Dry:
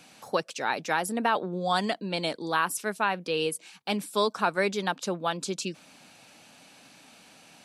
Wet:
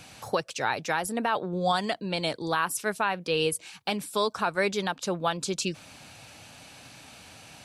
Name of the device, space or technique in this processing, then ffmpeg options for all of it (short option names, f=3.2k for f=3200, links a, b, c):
car stereo with a boomy subwoofer: -af "lowshelf=f=140:t=q:w=1.5:g=11.5,alimiter=limit=-19dB:level=0:latency=1:release=482,volume=5dB"